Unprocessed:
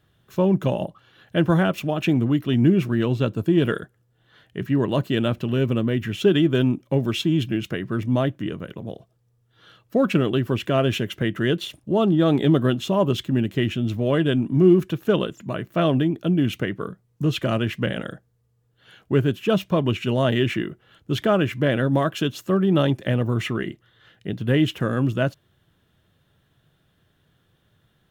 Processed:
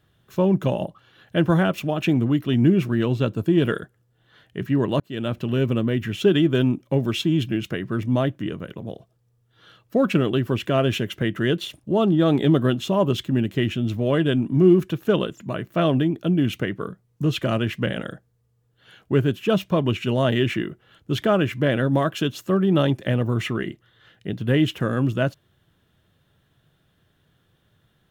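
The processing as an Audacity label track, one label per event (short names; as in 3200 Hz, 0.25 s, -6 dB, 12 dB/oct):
5.000000	5.590000	fade in equal-power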